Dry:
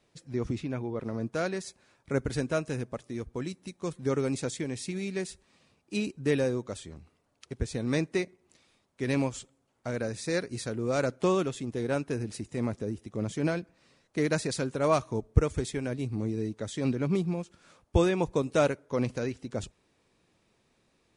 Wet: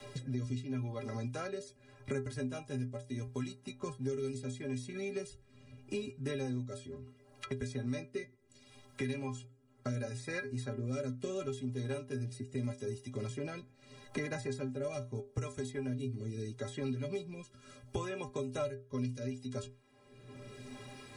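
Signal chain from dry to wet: rotary speaker horn 0.75 Hz; metallic resonator 120 Hz, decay 0.34 s, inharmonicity 0.03; three-band squash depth 100%; gain +3.5 dB

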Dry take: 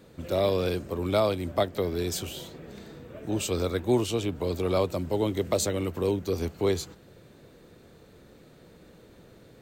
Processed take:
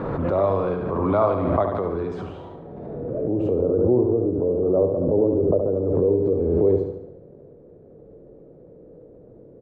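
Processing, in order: 3.55–5.92 Chebyshev low-pass 1500 Hz, order 8; transient shaper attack -1 dB, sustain +5 dB; low-pass sweep 1100 Hz -> 500 Hz, 2.34–3.13; feedback echo 72 ms, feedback 48%, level -6 dB; reverb RT60 0.35 s, pre-delay 6 ms, DRR 17 dB; backwards sustainer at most 26 dB/s

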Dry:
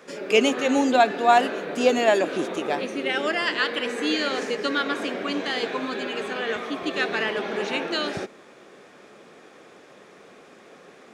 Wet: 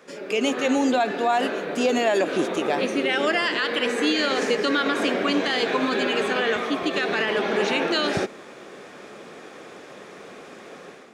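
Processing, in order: AGC gain up to 9 dB; limiter -10.5 dBFS, peak gain reduction 9 dB; gain -2 dB

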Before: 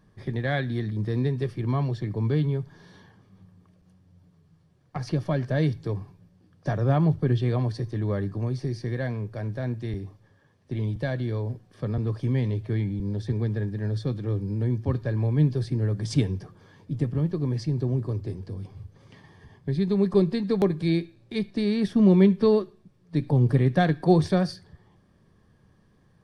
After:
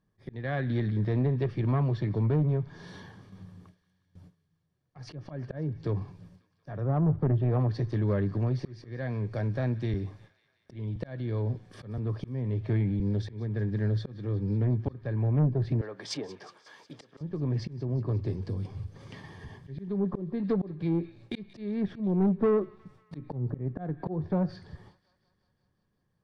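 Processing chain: treble ducked by the level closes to 930 Hz, closed at -18.5 dBFS; 15.81–17.21 HPF 640 Hz 12 dB/oct; gate with hold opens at -48 dBFS; auto swell 0.467 s; in parallel at -1 dB: compressor, threshold -40 dBFS, peak gain reduction 22 dB; on the sum: soft clip -19 dBFS, distortion -14 dB; on a send: thin delay 0.181 s, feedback 67%, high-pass 1600 Hz, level -17.5 dB; on the sum: Doppler distortion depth 0.12 ms

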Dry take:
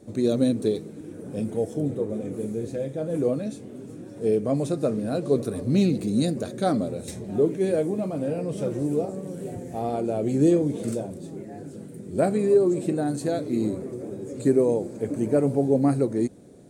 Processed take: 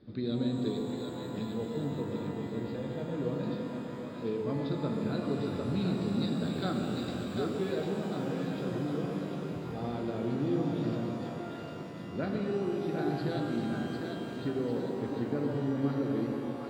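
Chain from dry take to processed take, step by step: bell 650 Hz -10.5 dB 1.4 oct; compressor, threshold -24 dBFS, peak gain reduction 6.5 dB; rippled Chebyshev low-pass 5000 Hz, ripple 6 dB; on a send: split-band echo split 530 Hz, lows 0.134 s, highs 0.749 s, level -4.5 dB; on the sum: shimmer reverb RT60 3.3 s, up +12 st, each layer -8 dB, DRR 3 dB

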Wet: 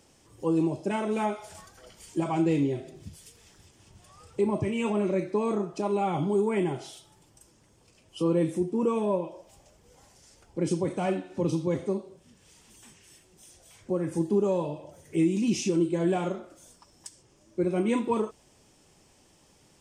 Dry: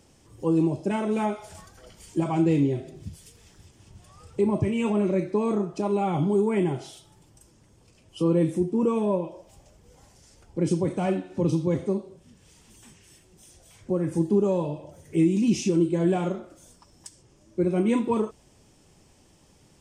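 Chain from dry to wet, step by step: low shelf 260 Hz -7 dB

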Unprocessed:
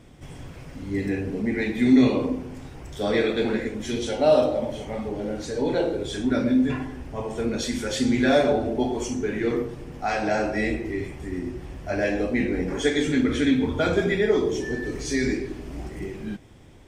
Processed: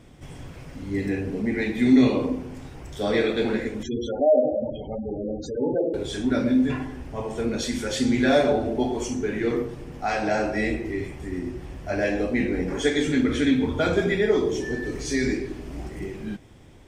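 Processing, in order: 3.83–5.94 spectral gate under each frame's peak -15 dB strong

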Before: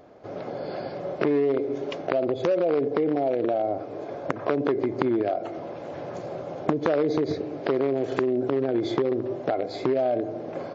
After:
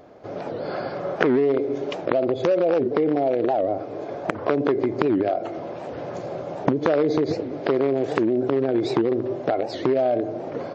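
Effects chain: 0.65–1.36 bell 1300 Hz +8 dB 0.8 oct; record warp 78 rpm, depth 250 cents; gain +3 dB

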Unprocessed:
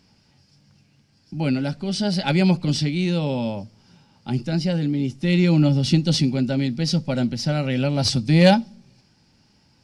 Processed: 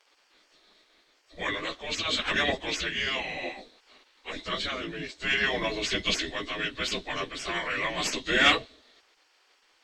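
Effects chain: pitch shift by moving bins -4.5 st; spectral gate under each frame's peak -20 dB weak; gain +7.5 dB

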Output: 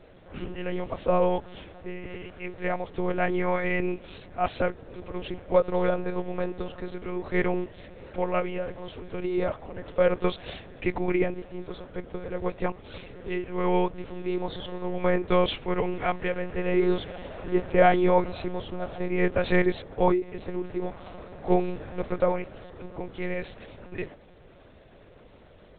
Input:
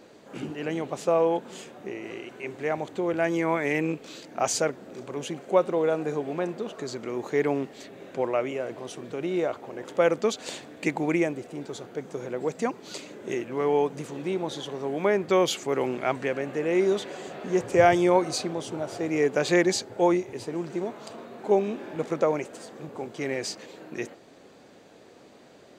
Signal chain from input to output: monotone LPC vocoder at 8 kHz 180 Hz

